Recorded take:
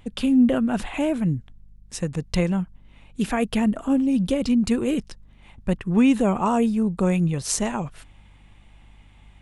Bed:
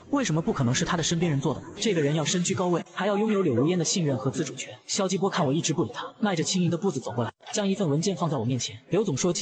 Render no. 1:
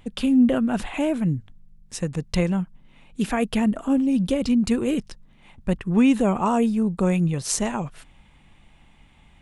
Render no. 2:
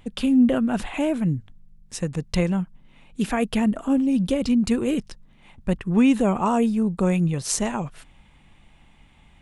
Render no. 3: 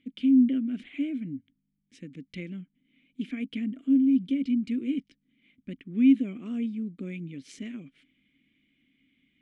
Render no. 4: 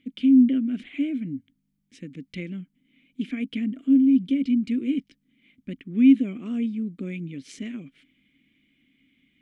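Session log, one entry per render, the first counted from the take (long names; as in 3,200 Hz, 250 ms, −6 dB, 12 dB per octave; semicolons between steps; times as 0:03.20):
hum removal 50 Hz, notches 2
no processing that can be heard
formant filter i
level +4 dB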